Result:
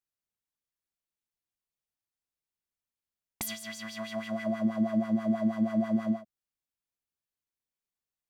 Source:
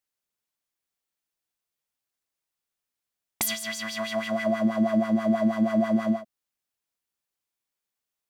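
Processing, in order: low shelf 230 Hz +9.5 dB; gain -9 dB

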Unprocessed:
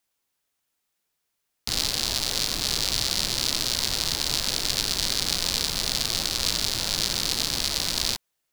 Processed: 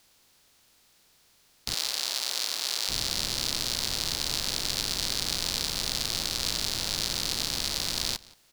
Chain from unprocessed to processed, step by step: per-bin compression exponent 0.6; 1.74–2.89 HPF 550 Hz 12 dB/oct; outdoor echo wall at 30 m, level -21 dB; gain -6.5 dB

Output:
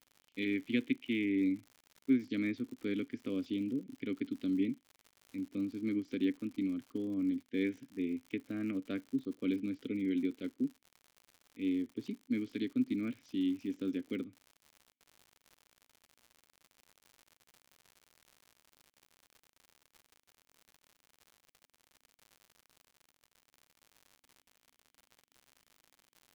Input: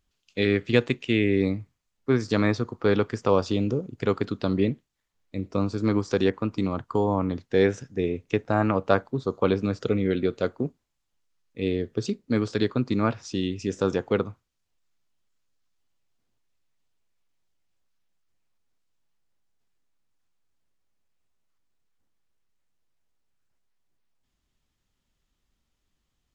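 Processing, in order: vowel filter i; crackle 110/s -46 dBFS

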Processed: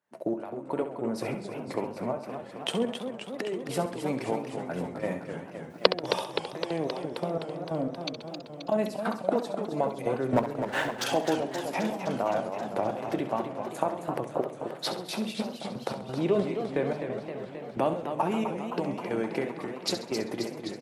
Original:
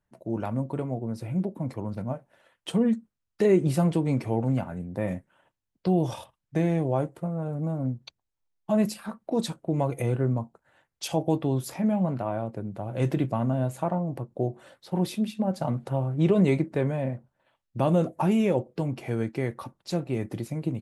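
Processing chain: ending faded out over 3.00 s; recorder AGC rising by 51 dB/s; HPF 330 Hz 12 dB/oct; high shelf 5300 Hz -6 dB; 10.33–11.04 sample leveller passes 3; step gate "xxxx....xx.." 179 bpm -12 dB; feedback echo 67 ms, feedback 41%, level -10.5 dB; warbling echo 0.261 s, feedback 73%, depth 189 cents, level -8 dB

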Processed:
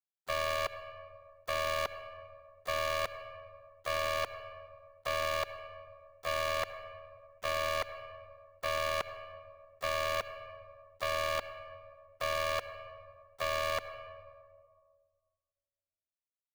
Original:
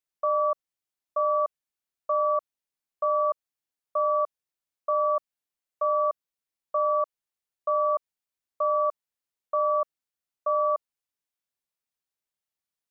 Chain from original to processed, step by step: Wiener smoothing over 41 samples; gate -27 dBFS, range -37 dB; low shelf 410 Hz -6.5 dB; in parallel at -1 dB: compressor 8:1, threshold -36 dBFS, peak gain reduction 11.5 dB; on the sum: requantised 10-bit, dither none; soft clip -19.5 dBFS, distortion -21 dB; tempo 0.78×; ring modulator 39 Hz; on a send at -19.5 dB: reverb RT60 1.5 s, pre-delay 61 ms; on the sum: spectral compressor 2:1

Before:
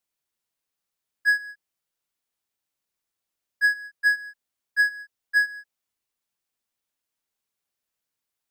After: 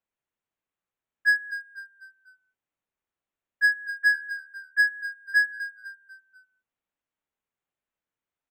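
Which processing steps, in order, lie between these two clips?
Wiener smoothing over 9 samples; frequency-shifting echo 0.248 s, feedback 43%, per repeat -38 Hz, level -13 dB

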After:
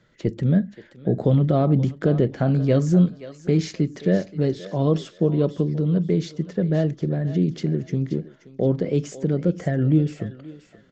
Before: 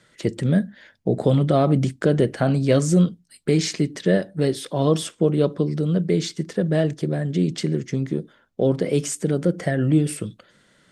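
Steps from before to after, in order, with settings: tilt -2 dB/oct; on a send: thinning echo 0.527 s, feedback 30%, high-pass 680 Hz, level -12 dB; on the sum: downsampling 16000 Hz; gain -4.5 dB

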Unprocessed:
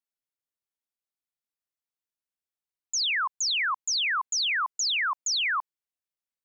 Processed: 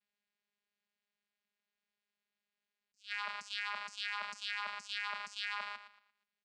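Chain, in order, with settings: one-sided fold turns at -27.5 dBFS; Schroeder reverb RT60 0.68 s, combs from 30 ms, DRR 18.5 dB; negative-ratio compressor -35 dBFS, ratio -0.5; fifteen-band EQ 160 Hz -5 dB, 2500 Hz +11 dB, 6300 Hz -10 dB; echo 0.118 s -16.5 dB; level quantiser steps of 10 dB; vocoder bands 8, saw 205 Hz; high shelf 2400 Hz +9 dB; attack slew limiter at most 270 dB/s; gain -1.5 dB

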